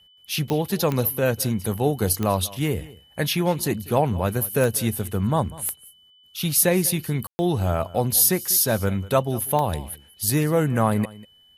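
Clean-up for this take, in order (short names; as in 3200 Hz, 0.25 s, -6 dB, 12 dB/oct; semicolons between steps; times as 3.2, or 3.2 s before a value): de-click; notch 3000 Hz, Q 30; room tone fill 7.27–7.39; inverse comb 0.195 s -20 dB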